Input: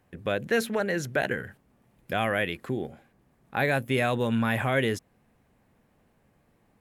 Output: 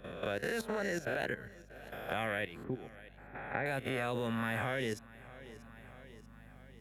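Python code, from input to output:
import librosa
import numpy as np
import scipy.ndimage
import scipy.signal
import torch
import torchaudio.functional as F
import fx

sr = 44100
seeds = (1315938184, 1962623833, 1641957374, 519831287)

p1 = fx.spec_swells(x, sr, rise_s=0.72)
p2 = fx.lowpass(p1, sr, hz=2400.0, slope=24, at=(2.64, 3.66))
p3 = fx.level_steps(p2, sr, step_db=14)
p4 = fx.add_hum(p3, sr, base_hz=50, snr_db=23)
p5 = p4 + fx.echo_feedback(p4, sr, ms=636, feedback_pct=49, wet_db=-23.5, dry=0)
p6 = fx.band_squash(p5, sr, depth_pct=40)
y = p6 * librosa.db_to_amplitude(-7.0)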